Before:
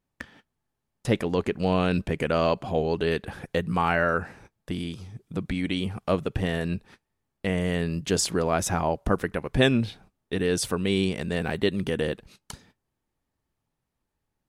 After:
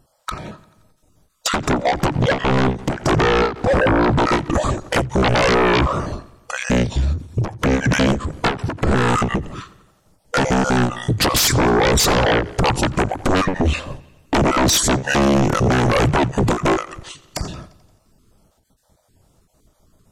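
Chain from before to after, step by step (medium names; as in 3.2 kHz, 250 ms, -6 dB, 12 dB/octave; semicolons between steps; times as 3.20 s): random holes in the spectrogram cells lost 25%; peaking EQ 3 kHz -9.5 dB 1.2 oct; in parallel at -2 dB: peak limiter -17.5 dBFS, peak gain reduction 9.5 dB; on the sum: compression 16:1, threshold -22 dBFS, peak gain reduction 10.5 dB; sine folder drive 17 dB, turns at -12 dBFS; tape speed -28%; bucket-brigade echo 87 ms, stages 4096, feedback 58%, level -20.5 dB; endings held to a fixed fall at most 160 dB/s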